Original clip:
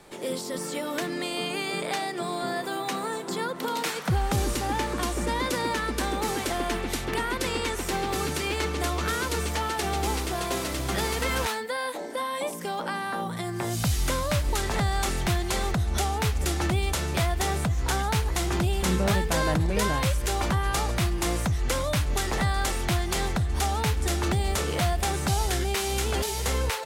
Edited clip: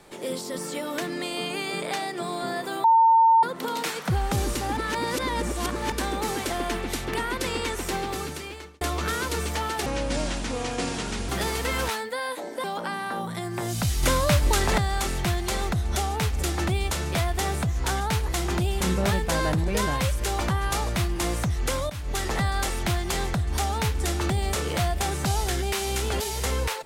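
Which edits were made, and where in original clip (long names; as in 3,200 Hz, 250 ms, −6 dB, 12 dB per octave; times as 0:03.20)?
0:02.84–0:03.43: beep over 905 Hz −13.5 dBFS
0:04.77–0:05.92: reverse
0:07.92–0:08.81: fade out
0:09.86–0:10.86: play speed 70%
0:12.21–0:12.66: remove
0:14.05–0:14.80: clip gain +5 dB
0:21.92–0:22.23: fade in, from −17 dB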